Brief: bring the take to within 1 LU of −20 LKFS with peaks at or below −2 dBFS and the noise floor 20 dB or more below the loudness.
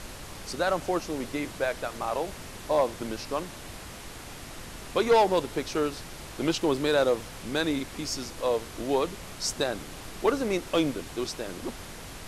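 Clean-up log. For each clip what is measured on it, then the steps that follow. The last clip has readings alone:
share of clipped samples 0.4%; peaks flattened at −15.5 dBFS; background noise floor −43 dBFS; target noise floor −49 dBFS; integrated loudness −29.0 LKFS; sample peak −15.5 dBFS; target loudness −20.0 LKFS
→ clipped peaks rebuilt −15.5 dBFS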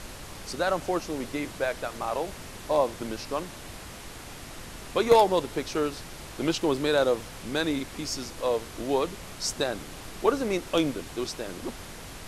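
share of clipped samples 0.0%; background noise floor −43 dBFS; target noise floor −49 dBFS
→ noise reduction from a noise print 6 dB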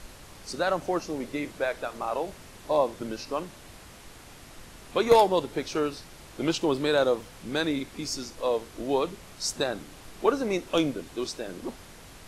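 background noise floor −48 dBFS; target noise floor −49 dBFS
→ noise reduction from a noise print 6 dB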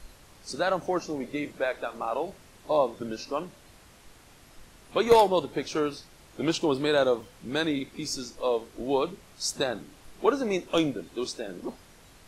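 background noise floor −54 dBFS; integrated loudness −28.5 LKFS; sample peak −6.5 dBFS; target loudness −20.0 LKFS
→ level +8.5 dB
brickwall limiter −2 dBFS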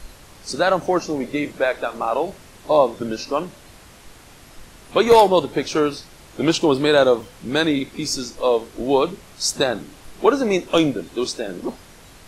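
integrated loudness −20.5 LKFS; sample peak −2.0 dBFS; background noise floor −46 dBFS

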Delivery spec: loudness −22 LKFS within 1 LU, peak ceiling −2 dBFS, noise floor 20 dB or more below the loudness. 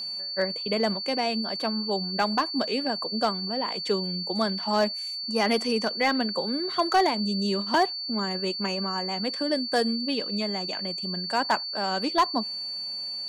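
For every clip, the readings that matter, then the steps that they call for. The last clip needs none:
share of clipped samples 0.2%; peaks flattened at −14.5 dBFS; interfering tone 4,500 Hz; level of the tone −31 dBFS; integrated loudness −26.5 LKFS; sample peak −14.5 dBFS; target loudness −22.0 LKFS
→ clipped peaks rebuilt −14.5 dBFS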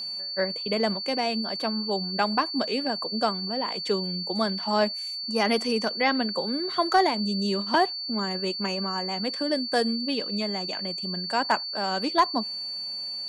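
share of clipped samples 0.0%; interfering tone 4,500 Hz; level of the tone −31 dBFS
→ notch filter 4,500 Hz, Q 30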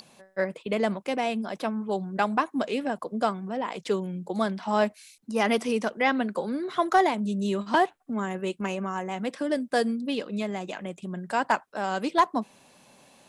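interfering tone none found; integrated loudness −28.0 LKFS; sample peak −8.5 dBFS; target loudness −22.0 LKFS
→ level +6 dB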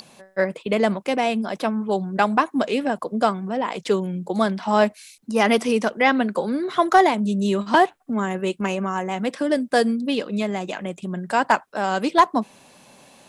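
integrated loudness −22.0 LKFS; sample peak −2.5 dBFS; background noise floor −54 dBFS

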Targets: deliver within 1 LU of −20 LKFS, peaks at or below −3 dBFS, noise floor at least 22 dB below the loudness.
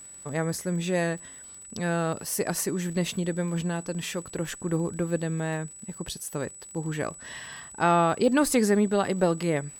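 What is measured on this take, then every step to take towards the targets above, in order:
crackle rate 51 per second; interfering tone 7,900 Hz; level of the tone −43 dBFS; integrated loudness −27.5 LKFS; sample peak −9.5 dBFS; target loudness −20.0 LKFS
→ click removal
notch filter 7,900 Hz, Q 30
level +7.5 dB
brickwall limiter −3 dBFS

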